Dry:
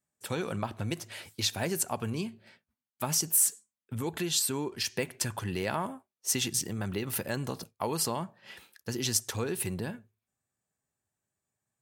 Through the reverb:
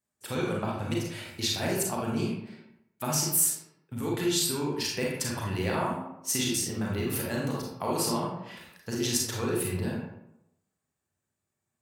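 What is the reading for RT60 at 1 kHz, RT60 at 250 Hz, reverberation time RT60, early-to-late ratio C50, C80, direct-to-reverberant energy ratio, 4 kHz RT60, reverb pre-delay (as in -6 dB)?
0.85 s, 0.90 s, 0.85 s, 0.5 dB, 5.0 dB, -3.0 dB, 0.45 s, 31 ms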